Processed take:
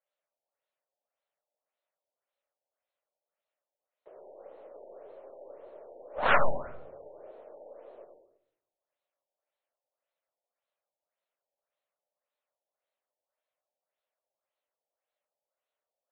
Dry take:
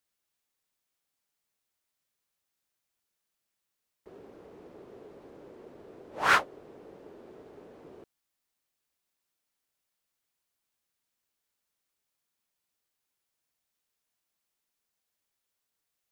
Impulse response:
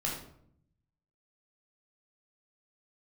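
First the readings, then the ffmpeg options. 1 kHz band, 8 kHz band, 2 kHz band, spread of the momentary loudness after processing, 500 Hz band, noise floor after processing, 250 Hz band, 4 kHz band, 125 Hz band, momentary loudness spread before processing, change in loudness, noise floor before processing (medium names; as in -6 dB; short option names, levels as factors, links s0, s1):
0.0 dB, under -25 dB, -2.5 dB, 20 LU, +6.5 dB, under -85 dBFS, -1.0 dB, -5.5 dB, +5.0 dB, 4 LU, -3.5 dB, -84 dBFS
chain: -filter_complex "[0:a]highpass=f=580:t=q:w=4.9,aeval=exprs='0.398*(cos(1*acos(clip(val(0)/0.398,-1,1)))-cos(1*PI/2))+0.0141*(cos(2*acos(clip(val(0)/0.398,-1,1)))-cos(2*PI/2))+0.0708*(cos(4*acos(clip(val(0)/0.398,-1,1)))-cos(4*PI/2))+0.00794*(cos(7*acos(clip(val(0)/0.398,-1,1)))-cos(7*PI/2))+0.00316*(cos(8*acos(clip(val(0)/0.398,-1,1)))-cos(8*PI/2))':c=same,flanger=delay=3.6:depth=4.1:regen=-69:speed=0.66:shape=sinusoidal,asplit=2[s0][s1];[1:a]atrim=start_sample=2205,adelay=94[s2];[s1][s2]afir=irnorm=-1:irlink=0,volume=0.376[s3];[s0][s3]amix=inputs=2:normalize=0,afftfilt=real='re*lt(b*sr/1024,920*pow(4400/920,0.5+0.5*sin(2*PI*1.8*pts/sr)))':imag='im*lt(b*sr/1024,920*pow(4400/920,0.5+0.5*sin(2*PI*1.8*pts/sr)))':win_size=1024:overlap=0.75"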